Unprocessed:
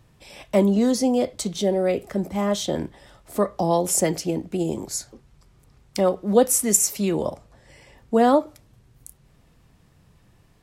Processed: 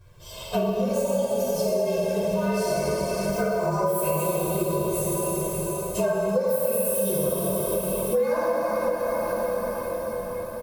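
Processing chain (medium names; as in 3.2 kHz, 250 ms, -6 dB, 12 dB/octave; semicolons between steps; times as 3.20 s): frequency axis rescaled in octaves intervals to 113%; comb 1.9 ms, depth 94%; echo that smears into a reverb 517 ms, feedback 68%, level -16 dB; plate-style reverb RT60 3.6 s, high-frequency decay 1×, DRR -8.5 dB; compression 6:1, threshold -22 dBFS, peak gain reduction 17.5 dB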